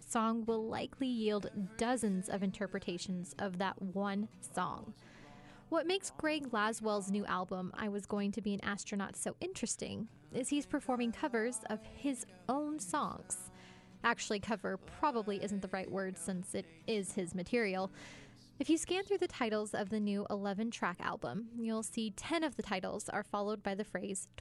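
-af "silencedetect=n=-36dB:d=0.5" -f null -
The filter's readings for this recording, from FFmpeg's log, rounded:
silence_start: 4.74
silence_end: 5.72 | silence_duration: 0.97
silence_start: 13.37
silence_end: 14.04 | silence_duration: 0.67
silence_start: 17.86
silence_end: 18.60 | silence_duration: 0.74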